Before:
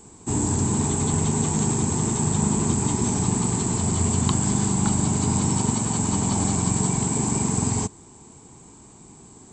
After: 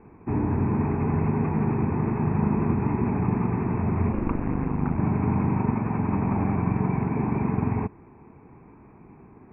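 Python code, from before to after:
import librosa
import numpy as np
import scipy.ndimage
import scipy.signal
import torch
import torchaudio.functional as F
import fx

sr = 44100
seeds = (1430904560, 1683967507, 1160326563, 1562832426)

y = scipy.signal.sosfilt(scipy.signal.cheby1(10, 1.0, 2600.0, 'lowpass', fs=sr, output='sos'), x)
y = fx.ring_mod(y, sr, carrier_hz=fx.line((4.12, 130.0), (4.96, 39.0)), at=(4.12, 4.96), fade=0.02)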